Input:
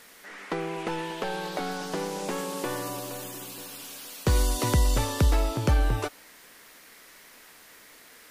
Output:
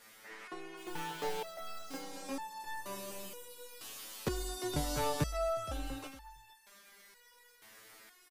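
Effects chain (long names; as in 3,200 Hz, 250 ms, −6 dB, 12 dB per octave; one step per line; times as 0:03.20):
echo through a band-pass that steps 223 ms, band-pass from 1,300 Hz, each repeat 1.4 octaves, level −6 dB
0:00.77–0:01.97: log-companded quantiser 4 bits
on a send: single-tap delay 459 ms −18 dB
on the sum: step-sequenced resonator 2.1 Hz 110–880 Hz
level +4 dB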